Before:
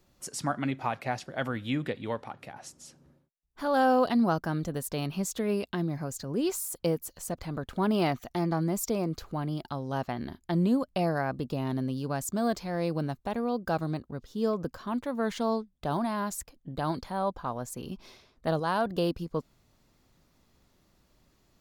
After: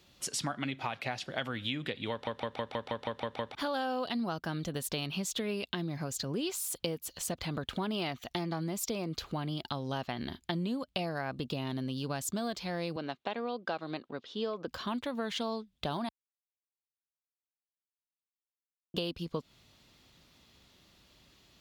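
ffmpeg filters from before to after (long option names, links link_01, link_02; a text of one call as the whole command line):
ffmpeg -i in.wav -filter_complex "[0:a]asettb=1/sr,asplit=3[link_01][link_02][link_03];[link_01]atrim=end=12.964[link_04];[link_02]atrim=start=12.96:end=14.68,asetpts=PTS-STARTPTS,afade=type=in:duration=0.004:curve=qsin,afade=type=out:start_time=1.716:duration=0.004:curve=qsin,highpass=300,lowpass=3900[link_05];[link_03]atrim=start=14.676[link_06];[link_04][link_05]acrossfade=duration=0.004:curve1=hsin:curve2=qsin[link_07];[link_07][link_06]acrossfade=duration=0.004:curve1=qsin:curve2=hsin,asplit=12[link_08][link_09][link_10][link_11][link_12][link_13][link_14][link_15][link_16][link_17][link_18][link_19];[link_08]atrim=end=2.272[link_20];[link_09]atrim=start=2.108:end=2.272[link_21];[link_10]atrim=start=2.108:end=2.272[link_22];[link_11]atrim=start=2.108:end=2.272[link_23];[link_12]atrim=start=2.108:end=2.272[link_24];[link_13]atrim=start=2.108:end=2.272[link_25];[link_14]atrim=start=2.108:end=2.272[link_26];[link_15]atrim=start=2.108:end=2.272[link_27];[link_16]atrim=start=2.108:end=2.272[link_28];[link_17]atrim=start=3.548:end=16.09,asetpts=PTS-STARTPTS,afade=type=out:start_time=12.538:duration=0.004:curve=hsin[link_29];[link_18]atrim=start=16.09:end=18.94,asetpts=PTS-STARTPTS,volume=0[link_30];[link_19]atrim=start=18.94,asetpts=PTS-STARTPTS,afade=type=in:duration=0.004:curve=hsin[link_31];[link_20][link_21]acrossfade=duration=0.004:curve1=hsin:curve2=hsin[link_32];[link_32][link_22]acrossfade=duration=0.004:curve1=hsin:curve2=hsin[link_33];[link_33][link_23]acrossfade=duration=0.004:curve1=hsin:curve2=hsin[link_34];[link_34][link_24]acrossfade=duration=0.004:curve1=hsin:curve2=hsin[link_35];[link_35][link_25]acrossfade=duration=0.004:curve1=hsin:curve2=hsin[link_36];[link_36][link_26]acrossfade=duration=0.004:curve1=hsin:curve2=hsin[link_37];[link_37][link_27]acrossfade=duration=0.004:curve1=hsin:curve2=hsin[link_38];[link_38][link_28]acrossfade=duration=0.004:curve1=hsin:curve2=hsin[link_39];[link_29][link_30][link_31]concat=n=3:v=0:a=1[link_40];[link_39][link_40]acrossfade=duration=0.004:curve1=hsin:curve2=hsin,highpass=45,equalizer=frequency=3300:width_type=o:width=1.3:gain=12,acompressor=threshold=-33dB:ratio=6,volume=1.5dB" out.wav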